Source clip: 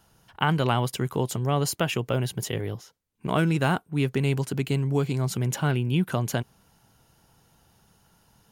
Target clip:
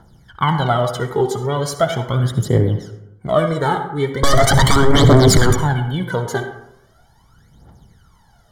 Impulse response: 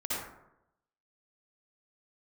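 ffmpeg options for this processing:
-filter_complex "[0:a]aemphasis=mode=reproduction:type=50kf,asettb=1/sr,asplit=3[link_01][link_02][link_03];[link_01]atrim=end=4.234[link_04];[link_02]atrim=start=4.23:end=5.53,asetpts=PTS-STARTPTS,afade=type=in:duration=0.004:curve=qsin,afade=type=out:start_time=1.296:duration=0.004:curve=qsin,aeval=exprs='0.211*sin(PI/2*7.08*val(0)/0.211)':channel_layout=same[link_05];[link_03]atrim=start=5.526[link_06];[link_04][link_05]acrossfade=duration=0.004:curve1=hsin:curve2=qsin[link_07];[link_07][link_06]acrossfade=duration=0.004:curve1=qsin:curve2=hsin,asuperstop=centerf=2600:order=20:qfactor=4,bandreject=frequency=86.55:width_type=h:width=4,bandreject=frequency=173.1:width_type=h:width=4,bandreject=frequency=259.65:width_type=h:width=4,bandreject=frequency=346.2:width_type=h:width=4,bandreject=frequency=432.75:width_type=h:width=4,bandreject=frequency=519.3:width_type=h:width=4,bandreject=frequency=605.85:width_type=h:width=4,bandreject=frequency=692.4:width_type=h:width=4,bandreject=frequency=778.95:width_type=h:width=4,bandreject=frequency=865.5:width_type=h:width=4,bandreject=frequency=952.05:width_type=h:width=4,bandreject=frequency=1038.6:width_type=h:width=4,bandreject=frequency=1125.15:width_type=h:width=4,bandreject=frequency=1211.7:width_type=h:width=4,bandreject=frequency=1298.25:width_type=h:width=4,bandreject=frequency=1384.8:width_type=h:width=4,bandreject=frequency=1471.35:width_type=h:width=4,bandreject=frequency=1557.9:width_type=h:width=4,bandreject=frequency=1644.45:width_type=h:width=4,bandreject=frequency=1731:width_type=h:width=4,bandreject=frequency=1817.55:width_type=h:width=4,bandreject=frequency=1904.1:width_type=h:width=4,bandreject=frequency=1990.65:width_type=h:width=4,bandreject=frequency=2077.2:width_type=h:width=4,bandreject=frequency=2163.75:width_type=h:width=4,bandreject=frequency=2250.3:width_type=h:width=4,bandreject=frequency=2336.85:width_type=h:width=4,bandreject=frequency=2423.4:width_type=h:width=4,bandreject=frequency=2509.95:width_type=h:width=4,bandreject=frequency=2596.5:width_type=h:width=4,bandreject=frequency=2683.05:width_type=h:width=4,bandreject=frequency=2769.6:width_type=h:width=4,bandreject=frequency=2856.15:width_type=h:width=4,bandreject=frequency=2942.7:width_type=h:width=4,bandreject=frequency=3029.25:width_type=h:width=4,bandreject=frequency=3115.8:width_type=h:width=4,bandreject=frequency=3202.35:width_type=h:width=4,bandreject=frequency=3288.9:width_type=h:width=4,bandreject=frequency=3375.45:width_type=h:width=4,bandreject=frequency=3462:width_type=h:width=4,aphaser=in_gain=1:out_gain=1:delay=2.6:decay=0.77:speed=0.39:type=triangular,alimiter=limit=-9.5dB:level=0:latency=1:release=11,asplit=2[link_08][link_09];[1:a]atrim=start_sample=2205[link_10];[link_09][link_10]afir=irnorm=-1:irlink=0,volume=-13dB[link_11];[link_08][link_11]amix=inputs=2:normalize=0,volume=4dB"

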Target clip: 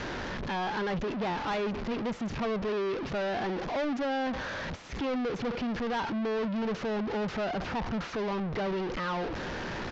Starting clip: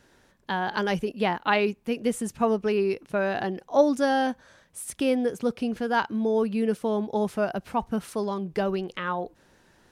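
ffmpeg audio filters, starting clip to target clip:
ffmpeg -i in.wav -filter_complex "[0:a]aeval=exprs='val(0)+0.5*0.0708*sgn(val(0))':channel_layout=same,anlmdn=25.1,acrossover=split=2600[link_01][link_02];[link_02]acompressor=threshold=-36dB:ratio=4:attack=1:release=60[link_03];[link_01][link_03]amix=inputs=2:normalize=0,aresample=16000,asoftclip=type=tanh:threshold=-23dB,aresample=44100,lowpass=frequency=5800:width=0.5412,lowpass=frequency=5800:width=1.3066,volume=-5dB" out.wav

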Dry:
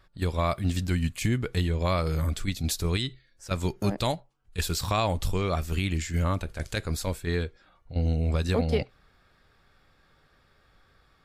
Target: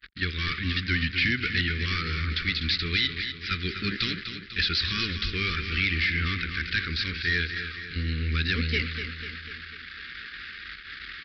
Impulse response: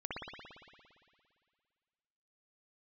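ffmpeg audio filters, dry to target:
-filter_complex "[0:a]aeval=exprs='val(0)+0.5*0.0158*sgn(val(0))':channel_layout=same,highpass=42,agate=range=-38dB:threshold=-41dB:ratio=16:detection=peak,equalizer=frequency=125:width_type=o:width=1:gain=-10,equalizer=frequency=500:width_type=o:width=1:gain=-9,equalizer=frequency=1000:width_type=o:width=1:gain=12,equalizer=frequency=2000:width_type=o:width=1:gain=11,equalizer=frequency=4000:width_type=o:width=1:gain=7,aresample=11025,volume=19.5dB,asoftclip=hard,volume=-19.5dB,aresample=44100,asuperstop=centerf=790:order=8:qfactor=0.78,asplit=2[link_01][link_02];[link_02]aecho=0:1:248|496|744|992|1240|1488:0.355|0.195|0.107|0.059|0.0325|0.0179[link_03];[link_01][link_03]amix=inputs=2:normalize=0"

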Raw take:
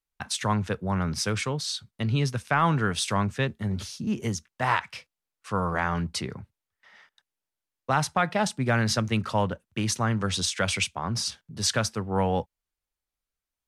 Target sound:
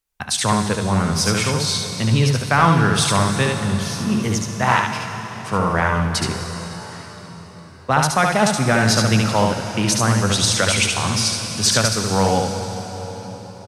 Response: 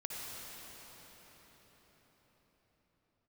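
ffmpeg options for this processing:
-filter_complex "[0:a]aecho=1:1:72:0.631,asplit=2[link_01][link_02];[1:a]atrim=start_sample=2205,highshelf=frequency=4400:gain=11.5[link_03];[link_02][link_03]afir=irnorm=-1:irlink=0,volume=-6dB[link_04];[link_01][link_04]amix=inputs=2:normalize=0,volume=4dB"

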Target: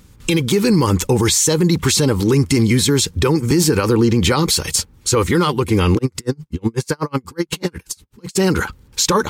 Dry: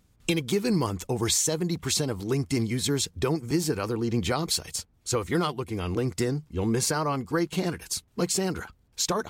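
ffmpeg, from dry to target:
ffmpeg -i in.wav -filter_complex "[0:a]asuperstop=centerf=680:order=4:qfactor=3.9,alimiter=level_in=22.5dB:limit=-1dB:release=50:level=0:latency=1,asplit=3[link_01][link_02][link_03];[link_01]afade=type=out:start_time=5.97:duration=0.02[link_04];[link_02]aeval=exprs='val(0)*pow(10,-40*(0.5-0.5*cos(2*PI*8.1*n/s))/20)':channel_layout=same,afade=type=in:start_time=5.97:duration=0.02,afade=type=out:start_time=8.35:duration=0.02[link_05];[link_03]afade=type=in:start_time=8.35:duration=0.02[link_06];[link_04][link_05][link_06]amix=inputs=3:normalize=0,volume=-5.5dB" out.wav

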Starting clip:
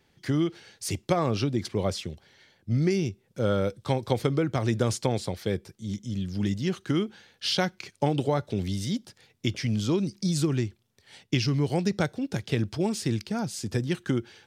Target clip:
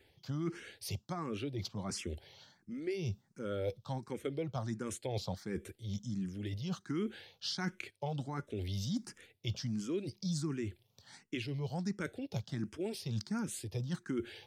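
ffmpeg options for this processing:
ffmpeg -i in.wav -filter_complex "[0:a]areverse,acompressor=threshold=-35dB:ratio=6,areverse,asplit=2[link_01][link_02];[link_02]afreqshift=1.4[link_03];[link_01][link_03]amix=inputs=2:normalize=1,volume=3dB" out.wav

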